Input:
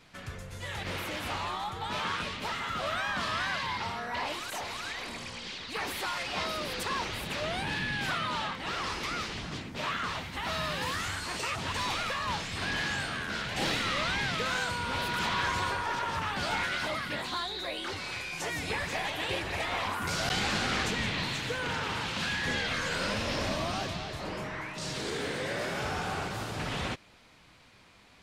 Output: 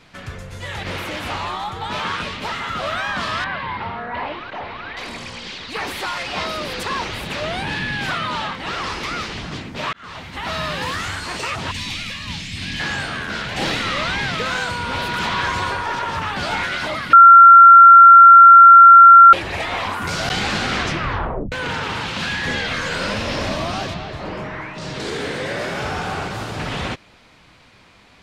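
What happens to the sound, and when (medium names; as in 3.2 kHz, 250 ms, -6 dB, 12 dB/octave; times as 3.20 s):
3.44–4.97 s: Gaussian low-pass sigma 2.8 samples
9.93–10.67 s: fade in equal-power
11.71–12.80 s: high-order bell 760 Hz -15 dB 2.4 oct
17.13–19.33 s: bleep 1.37 kHz -10.5 dBFS
20.76 s: tape stop 0.76 s
23.94–25.00 s: low-pass 3.1 kHz 6 dB/octave
whole clip: treble shelf 8.2 kHz -8 dB; trim +8.5 dB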